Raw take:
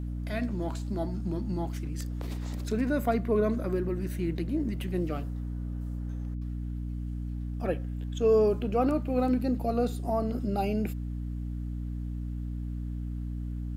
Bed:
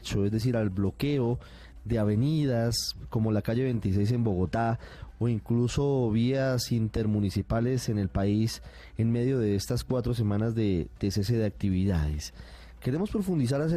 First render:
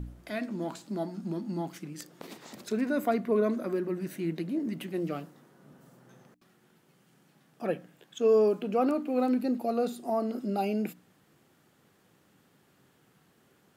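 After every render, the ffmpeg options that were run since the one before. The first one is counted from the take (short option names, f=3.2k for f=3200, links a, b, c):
-af "bandreject=f=60:t=h:w=4,bandreject=f=120:t=h:w=4,bandreject=f=180:t=h:w=4,bandreject=f=240:t=h:w=4,bandreject=f=300:t=h:w=4"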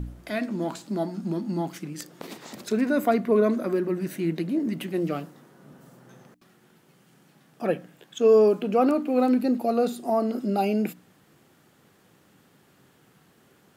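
-af "volume=5.5dB"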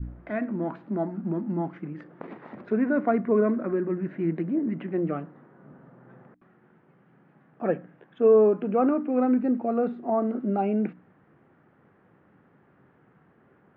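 -af "lowpass=f=1.9k:w=0.5412,lowpass=f=1.9k:w=1.3066,adynamicequalizer=threshold=0.0178:dfrequency=670:dqfactor=1:tfrequency=670:tqfactor=1:attack=5:release=100:ratio=0.375:range=2:mode=cutabove:tftype=bell"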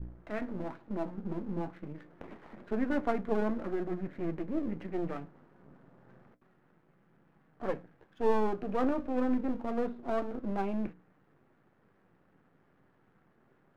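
-af "aeval=exprs='if(lt(val(0),0),0.251*val(0),val(0))':c=same,flanger=delay=5.9:depth=5.7:regen=-64:speed=0.28:shape=sinusoidal"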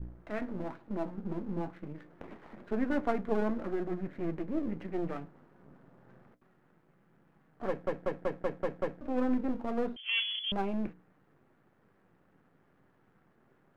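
-filter_complex "[0:a]asettb=1/sr,asplit=3[a][b][c];[a]atrim=end=9.964[d];[b]atrim=start=9.96:end=10.52,asetpts=PTS-STARTPTS,afade=t=in:d=0.004:c=qsin,afade=t=out:st=0.556:d=0.004:c=qsin,lowpass=f=2.9k:t=q:w=0.5098,lowpass=f=2.9k:t=q:w=0.6013,lowpass=f=2.9k:t=q:w=0.9,lowpass=f=2.9k:t=q:w=2.563,afreqshift=-3400[e];[c]atrim=start=10.516[f];[d][e]acrossfade=d=0.004:c1=hsin:c2=qsin[g];[g][f]acrossfade=d=0.004:c1=qsin:c2=hsin,asplit=8[h][i][j][k][l][m][n][o];[h]atrim=end=7.872[p];[i]atrim=start=7.678:end=7.872[q];[j]atrim=start=7.678:end=7.872[r];[k]atrim=start=7.678:end=7.872[s];[l]atrim=start=7.678:end=7.872[t];[m]atrim=start=7.678:end=7.872[u];[n]atrim=start=7.678:end=7.872[v];[o]atrim=start=9.008[w];[p][q]acrossfade=d=0.004:c1=hsin:c2=hsin[x];[x][r]acrossfade=d=0.004:c1=hsin:c2=hsin[y];[y][s]acrossfade=d=0.004:c1=hsin:c2=hsin[z];[z][t]acrossfade=d=0.004:c1=hsin:c2=hsin[aa];[aa][u]acrossfade=d=0.004:c1=hsin:c2=hsin[ab];[ab][v]acrossfade=d=0.004:c1=hsin:c2=hsin[ac];[ac][w]acrossfade=d=0.004:c1=hsin:c2=hsin"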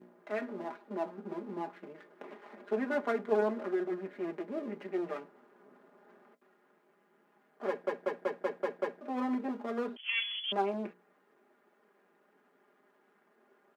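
-af "highpass=f=280:w=0.5412,highpass=f=280:w=1.3066,aecho=1:1:4.9:0.74"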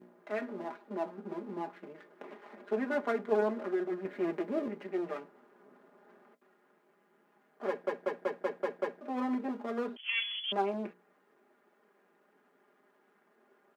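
-filter_complex "[0:a]asplit=3[a][b][c];[a]atrim=end=4.052[d];[b]atrim=start=4.048:end=4.682,asetpts=PTS-STARTPTS,volume=4.5dB[e];[c]atrim=start=4.678[f];[d][e]acrossfade=d=0.004:c1=hsin:c2=hsin[g];[g][f]acrossfade=d=0.004:c1=hsin:c2=hsin"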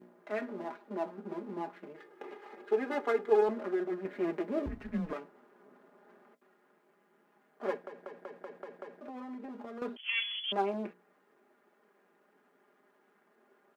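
-filter_complex "[0:a]asettb=1/sr,asplit=3[a][b][c];[a]atrim=end=1.964[d];[b]atrim=start=1.96:end=3.49,asetpts=PTS-STARTPTS,afade=t=in:d=0.004:c=qsin,afade=t=out:st=1.526:d=0.004:c=qsin,aecho=1:1:2.4:0.65,atrim=end_sample=67473[e];[c]atrim=start=3.486[f];[d][e]acrossfade=d=0.004:c1=hsin:c2=qsin[g];[g][f]acrossfade=d=0.004:c1=qsin:c2=hsin,asettb=1/sr,asplit=3[h][i][j];[h]atrim=end=4.664[k];[i]atrim=start=4.66:end=5.13,asetpts=PTS-STARTPTS,afade=t=in:d=0.004:c=qsin,afade=t=out:st=0.466:d=0.004:c=qsin,afreqshift=-160[l];[j]atrim=start=5.126[m];[k][l]acrossfade=d=0.004:c1=hsin:c2=qsin[n];[n][m]acrossfade=d=0.004:c1=qsin:c2=hsin,asettb=1/sr,asplit=3[o][p][q];[o]atrim=end=7.824[r];[p]atrim=start=7.82:end=9.82,asetpts=PTS-STARTPTS,afade=t=in:d=0.004:c=qsin,afade=t=out:st=1.996:d=0.004:c=qsin,acompressor=threshold=-40dB:ratio=10:attack=3.2:release=140:knee=1:detection=peak[s];[q]atrim=start=9.816[t];[r][s]acrossfade=d=0.004:c1=hsin:c2=qsin[u];[u][t]acrossfade=d=0.004:c1=qsin:c2=hsin"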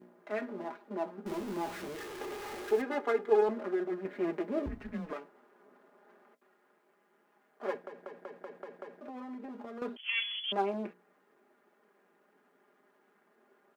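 -filter_complex "[0:a]asettb=1/sr,asplit=3[a][b][c];[a]atrim=end=1.264[d];[b]atrim=start=1.26:end=2.82,asetpts=PTS-STARTPTS,afade=t=in:d=0.004:c=qsin,afade=t=out:st=1.556:d=0.004:c=qsin,aeval=exprs='val(0)+0.5*0.0112*sgn(val(0))':c=same[e];[c]atrim=start=2.816[f];[d][e]acrossfade=d=0.004:c1=hsin:c2=qsin[g];[g][f]acrossfade=d=0.004:c1=qsin:c2=hsin,asettb=1/sr,asplit=3[h][i][j];[h]atrim=end=4.934[k];[i]atrim=start=4.93:end=7.75,asetpts=PTS-STARTPTS,afade=t=in:d=0.004:c=qsin,afade=t=out:st=2.816:d=0.004:c=qsin,lowshelf=f=170:g=-11.5[l];[j]atrim=start=7.746[m];[k][l]acrossfade=d=0.004:c1=hsin:c2=qsin[n];[n][m]acrossfade=d=0.004:c1=qsin:c2=hsin"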